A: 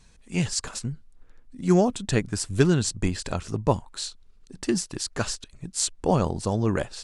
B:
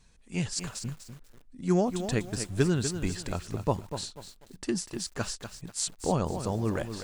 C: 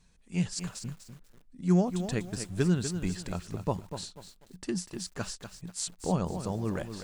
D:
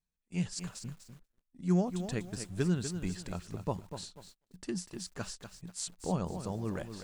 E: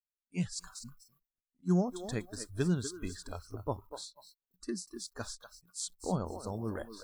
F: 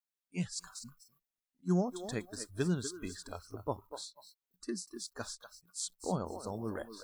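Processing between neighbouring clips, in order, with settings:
lo-fi delay 0.245 s, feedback 35%, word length 7-bit, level -9 dB; gain -5.5 dB
bell 180 Hz +7.5 dB 0.23 oct; gain -3.5 dB
gate -51 dBFS, range -22 dB; gain -4 dB
spectral noise reduction 23 dB
low shelf 98 Hz -10 dB

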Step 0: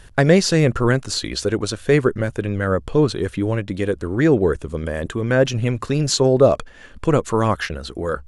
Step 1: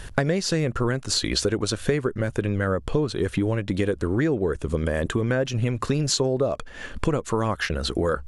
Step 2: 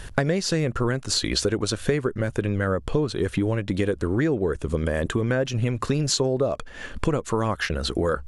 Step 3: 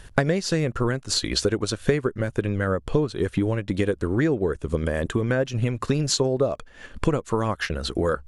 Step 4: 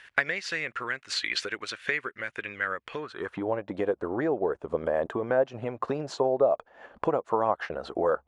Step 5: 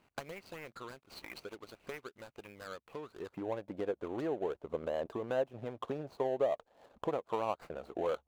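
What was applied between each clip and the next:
compressor 12:1, threshold -26 dBFS, peak gain reduction 18.5 dB; gain +6.5 dB
nothing audible
upward expander 1.5:1, over -39 dBFS; gain +2.5 dB
band-pass sweep 2100 Hz -> 750 Hz, 2.92–3.48; gain +6.5 dB
median filter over 25 samples; gain -8 dB

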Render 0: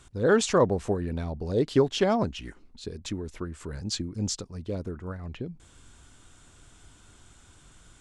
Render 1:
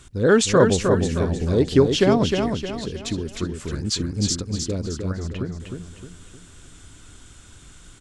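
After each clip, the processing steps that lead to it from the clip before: bell 800 Hz -6 dB 1.2 oct; on a send: feedback echo 0.309 s, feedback 41%, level -5 dB; on the sum: gain +7 dB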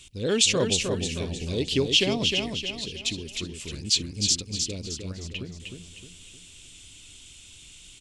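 resonant high shelf 2000 Hz +10 dB, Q 3; gain -9 dB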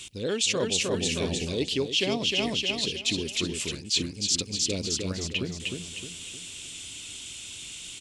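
HPF 190 Hz 6 dB/oct; reverse; compressor 5:1, threshold -33 dBFS, peak gain reduction 15.5 dB; reverse; gain +8.5 dB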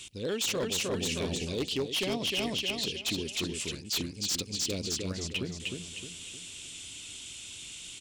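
wavefolder -20.5 dBFS; gain -3.5 dB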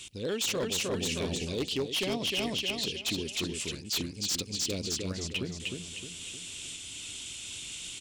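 recorder AGC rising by 10 dB/s

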